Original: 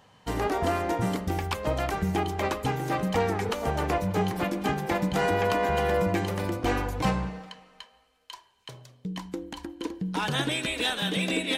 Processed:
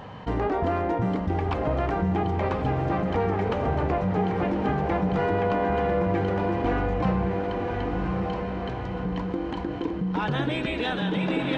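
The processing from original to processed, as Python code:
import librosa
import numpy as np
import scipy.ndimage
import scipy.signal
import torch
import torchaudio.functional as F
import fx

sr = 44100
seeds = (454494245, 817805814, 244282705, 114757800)

y = fx.spacing_loss(x, sr, db_at_10k=34)
y = fx.echo_diffused(y, sr, ms=1119, feedback_pct=44, wet_db=-6.0)
y = fx.env_flatten(y, sr, amount_pct=50)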